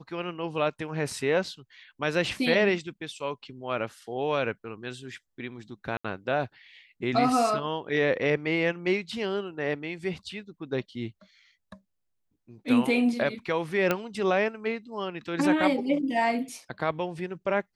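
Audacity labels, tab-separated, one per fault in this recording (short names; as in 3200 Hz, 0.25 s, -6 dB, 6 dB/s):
5.970000	6.040000	gap 75 ms
13.910000	13.910000	pop -10 dBFS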